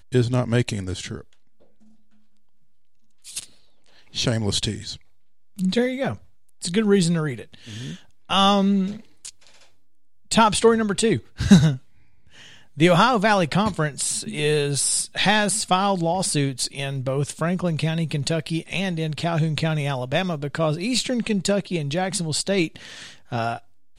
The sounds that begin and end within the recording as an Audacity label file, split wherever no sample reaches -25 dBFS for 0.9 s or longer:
3.360000	9.290000	sound
10.310000	11.750000	sound